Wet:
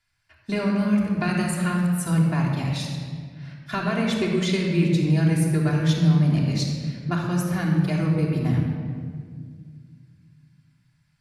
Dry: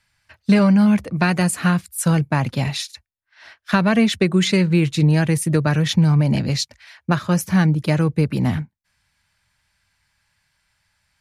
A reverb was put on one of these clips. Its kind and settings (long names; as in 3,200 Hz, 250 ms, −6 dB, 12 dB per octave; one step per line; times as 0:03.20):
rectangular room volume 3,300 cubic metres, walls mixed, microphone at 3.2 metres
level −10.5 dB